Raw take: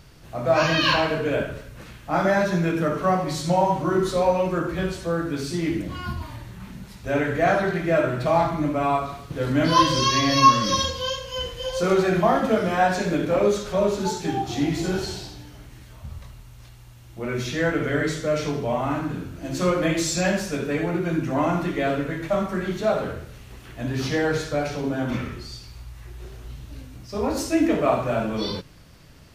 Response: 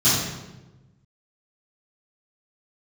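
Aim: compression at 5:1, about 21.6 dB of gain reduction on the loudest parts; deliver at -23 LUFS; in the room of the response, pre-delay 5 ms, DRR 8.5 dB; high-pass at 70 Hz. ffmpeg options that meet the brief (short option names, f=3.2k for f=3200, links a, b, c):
-filter_complex "[0:a]highpass=70,acompressor=threshold=-35dB:ratio=5,asplit=2[a][b];[1:a]atrim=start_sample=2205,adelay=5[c];[b][c]afir=irnorm=-1:irlink=0,volume=-26.5dB[d];[a][d]amix=inputs=2:normalize=0,volume=13dB"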